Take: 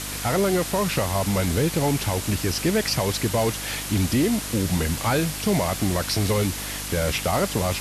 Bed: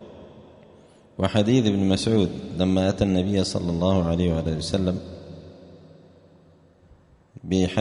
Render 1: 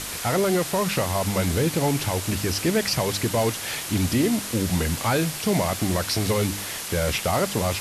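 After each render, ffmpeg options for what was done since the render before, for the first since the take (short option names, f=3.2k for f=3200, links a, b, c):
-af "bandreject=f=50:t=h:w=4,bandreject=f=100:t=h:w=4,bandreject=f=150:t=h:w=4,bandreject=f=200:t=h:w=4,bandreject=f=250:t=h:w=4,bandreject=f=300:t=h:w=4"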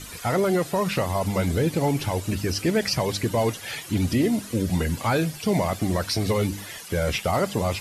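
-af "afftdn=nr=13:nf=-33"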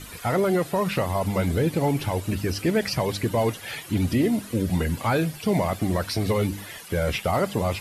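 -af "equalizer=f=6.2k:t=o:w=1.1:g=-5.5"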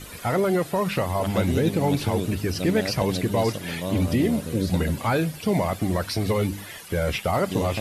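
-filter_complex "[1:a]volume=-8.5dB[a];[0:a][a]amix=inputs=2:normalize=0"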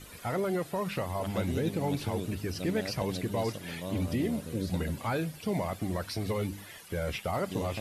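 -af "volume=-8.5dB"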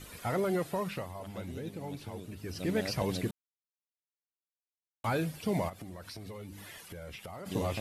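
-filter_complex "[0:a]asplit=3[a][b][c];[a]afade=t=out:st=5.68:d=0.02[d];[b]acompressor=threshold=-43dB:ratio=4:attack=3.2:release=140:knee=1:detection=peak,afade=t=in:st=5.68:d=0.02,afade=t=out:st=7.45:d=0.02[e];[c]afade=t=in:st=7.45:d=0.02[f];[d][e][f]amix=inputs=3:normalize=0,asplit=5[g][h][i][j][k];[g]atrim=end=1.14,asetpts=PTS-STARTPTS,afade=t=out:st=0.71:d=0.43:silence=0.316228[l];[h]atrim=start=1.14:end=2.36,asetpts=PTS-STARTPTS,volume=-10dB[m];[i]atrim=start=2.36:end=3.31,asetpts=PTS-STARTPTS,afade=t=in:d=0.43:silence=0.316228,afade=t=out:st=0.946:d=0.004:c=hsin[n];[j]atrim=start=3.31:end=5.04,asetpts=PTS-STARTPTS,volume=0[o];[k]atrim=start=5.04,asetpts=PTS-STARTPTS,afade=t=in:d=0.004:c=hsin[p];[l][m][n][o][p]concat=n=5:v=0:a=1"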